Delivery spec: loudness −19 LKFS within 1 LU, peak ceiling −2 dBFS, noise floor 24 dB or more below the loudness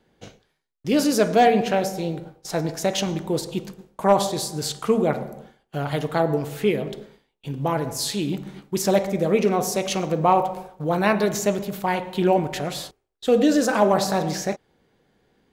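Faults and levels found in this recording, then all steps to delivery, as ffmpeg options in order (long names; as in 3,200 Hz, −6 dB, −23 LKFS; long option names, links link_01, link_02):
integrated loudness −23.0 LKFS; sample peak −7.0 dBFS; target loudness −19.0 LKFS
→ -af "volume=4dB"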